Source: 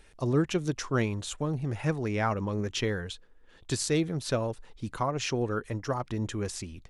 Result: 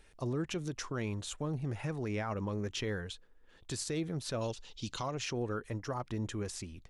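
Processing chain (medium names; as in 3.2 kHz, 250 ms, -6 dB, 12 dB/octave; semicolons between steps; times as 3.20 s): 4.41–5.15 s: high-order bell 4.4 kHz +15.5 dB; peak limiter -22.5 dBFS, peak gain reduction 8 dB; trim -4.5 dB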